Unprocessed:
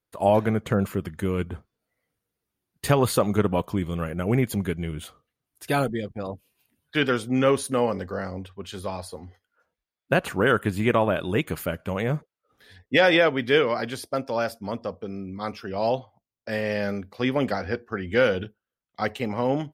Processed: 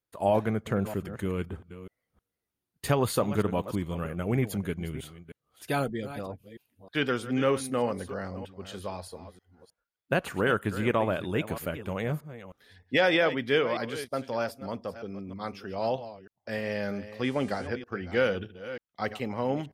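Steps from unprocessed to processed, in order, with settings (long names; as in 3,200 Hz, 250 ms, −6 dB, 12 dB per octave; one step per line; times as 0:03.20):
delay that plays each chunk backwards 313 ms, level −13 dB
0:17.23–0:17.66: hum with harmonics 400 Hz, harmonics 26, −49 dBFS −3 dB per octave
level −5 dB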